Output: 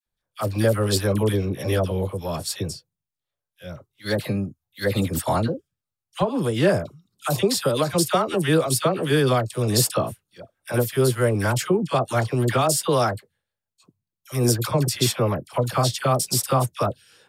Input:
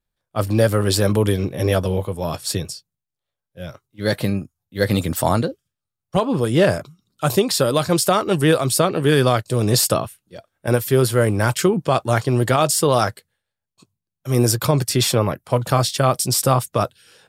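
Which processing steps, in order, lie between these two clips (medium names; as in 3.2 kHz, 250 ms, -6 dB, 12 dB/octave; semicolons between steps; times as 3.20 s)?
phase dispersion lows, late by 64 ms, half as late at 1.1 kHz; trim -3.5 dB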